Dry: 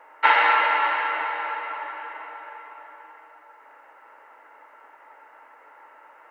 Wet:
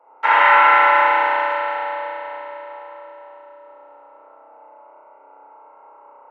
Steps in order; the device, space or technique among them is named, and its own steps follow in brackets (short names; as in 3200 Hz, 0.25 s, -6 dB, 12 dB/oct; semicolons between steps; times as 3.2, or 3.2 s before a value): Wiener smoothing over 25 samples; HPF 580 Hz 6 dB/oct; high shelf 2500 Hz -10.5 dB; dub delay into a spring reverb (darkening echo 0.318 s, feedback 76%, low-pass 2500 Hz, level -22.5 dB; spring tank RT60 3.6 s, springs 31 ms, chirp 30 ms, DRR -9 dB); gain +2 dB